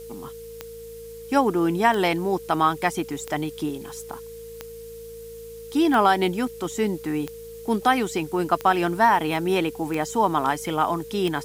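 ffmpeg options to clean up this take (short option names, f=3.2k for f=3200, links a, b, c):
-af "adeclick=t=4,bandreject=f=54.9:t=h:w=4,bandreject=f=109.8:t=h:w=4,bandreject=f=164.7:t=h:w=4,bandreject=f=219.6:t=h:w=4,bandreject=f=460:w=30,afftdn=nr=28:nf=-39"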